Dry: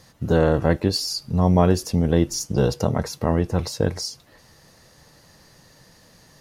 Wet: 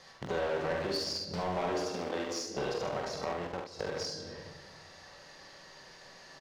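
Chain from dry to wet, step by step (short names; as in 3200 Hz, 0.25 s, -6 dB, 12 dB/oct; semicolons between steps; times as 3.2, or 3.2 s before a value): 1.82–2.57 steep high-pass 220 Hz 48 dB/oct; shoebox room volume 800 m³, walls mixed, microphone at 1.1 m; in parallel at -5.5 dB: sample gate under -17.5 dBFS; 3.32–3.89 on the sum: level quantiser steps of 20 dB; three-band isolator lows -15 dB, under 430 Hz, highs -22 dB, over 6100 Hz; soft clip -15 dBFS, distortion -11 dB; compressor 2.5:1, threshold -39 dBFS, peak gain reduction 13.5 dB; on a send: early reflections 46 ms -6.5 dB, 71 ms -6.5 dB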